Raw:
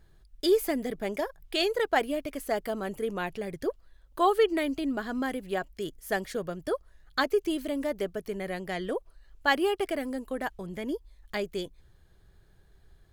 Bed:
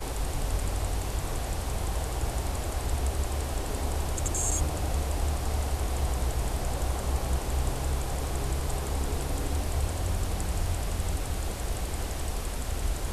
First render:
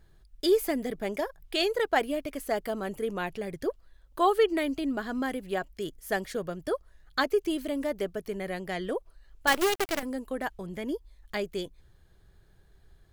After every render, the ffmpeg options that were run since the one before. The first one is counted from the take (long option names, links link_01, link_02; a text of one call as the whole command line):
ffmpeg -i in.wav -filter_complex "[0:a]asettb=1/sr,asplit=3[link_01][link_02][link_03];[link_01]atrim=end=9.474[link_04];[link_02]atrim=start=9.47:end=10.03,asetpts=PTS-STARTPTS,afade=type=in:duration=0.004:curve=qsin,afade=type=out:start_time=0.556:duration=0.004:curve=qsin,acrusher=bits=5:dc=4:mix=0:aa=0.000001[link_05];[link_03]atrim=start=10.026[link_06];[link_04][link_05]acrossfade=duration=0.004:curve1=hsin:curve2=qsin[link_07];[link_07][link_06]acrossfade=duration=0.004:curve1=qsin:curve2=hsin" out.wav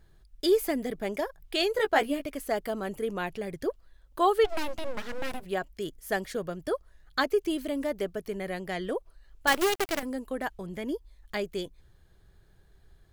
ffmpeg -i in.wav -filter_complex "[0:a]asettb=1/sr,asplit=3[link_01][link_02][link_03];[link_01]atrim=end=1.734[link_04];[link_02]atrim=start=1.73:end=2.26,asetpts=PTS-STARTPTS,afade=type=in:duration=0.004:curve=qsin,afade=type=out:start_time=0.526:duration=0.004:curve=qsin,asplit=2[link_05][link_06];[link_06]adelay=14,volume=-4dB[link_07];[link_05][link_07]amix=inputs=2:normalize=0,atrim=end_sample=23373[link_08];[link_03]atrim=start=2.256[link_09];[link_04][link_08]acrossfade=duration=0.004:curve1=hsin:curve2=qsin[link_10];[link_10][link_09]acrossfade=duration=0.004:curve1=qsin:curve2=hsin,asplit=3[link_11][link_12][link_13];[link_11]afade=type=out:start_time=4.44:duration=0.02[link_14];[link_12]aeval=exprs='abs(val(0))':channel_layout=same,afade=type=in:start_time=4.44:duration=0.02,afade=type=out:start_time=5.44:duration=0.02[link_15];[link_13]afade=type=in:start_time=5.44:duration=0.02[link_16];[link_14][link_15][link_16]amix=inputs=3:normalize=0" out.wav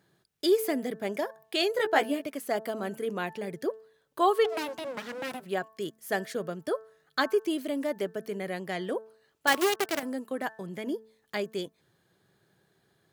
ffmpeg -i in.wav -af "highpass=frequency=140:width=0.5412,highpass=frequency=140:width=1.3066,bandreject=frequency=220.3:width_type=h:width=4,bandreject=frequency=440.6:width_type=h:width=4,bandreject=frequency=660.9:width_type=h:width=4,bandreject=frequency=881.2:width_type=h:width=4,bandreject=frequency=1101.5:width_type=h:width=4,bandreject=frequency=1321.8:width_type=h:width=4,bandreject=frequency=1542.1:width_type=h:width=4,bandreject=frequency=1762.4:width_type=h:width=4" out.wav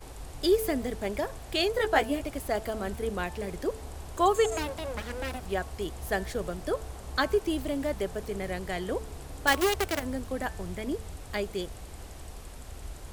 ffmpeg -i in.wav -i bed.wav -filter_complex "[1:a]volume=-11.5dB[link_01];[0:a][link_01]amix=inputs=2:normalize=0" out.wav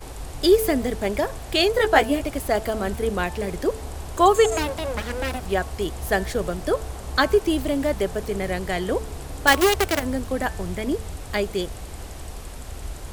ffmpeg -i in.wav -af "volume=7.5dB" out.wav